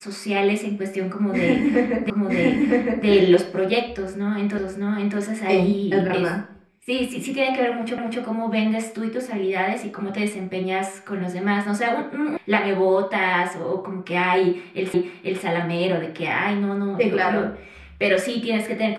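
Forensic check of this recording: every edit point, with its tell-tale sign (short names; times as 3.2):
2.1 repeat of the last 0.96 s
4.58 repeat of the last 0.61 s
7.98 repeat of the last 0.25 s
12.37 sound cut off
14.94 repeat of the last 0.49 s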